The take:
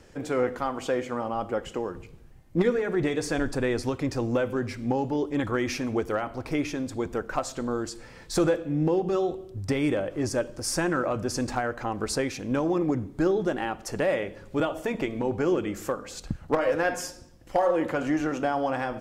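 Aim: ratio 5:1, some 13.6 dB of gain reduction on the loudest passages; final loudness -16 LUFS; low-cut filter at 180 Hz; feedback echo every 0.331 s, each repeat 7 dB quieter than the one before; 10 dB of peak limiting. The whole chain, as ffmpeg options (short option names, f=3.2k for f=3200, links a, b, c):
-af "highpass=180,acompressor=threshold=-35dB:ratio=5,alimiter=level_in=5.5dB:limit=-24dB:level=0:latency=1,volume=-5.5dB,aecho=1:1:331|662|993|1324|1655:0.447|0.201|0.0905|0.0407|0.0183,volume=23.5dB"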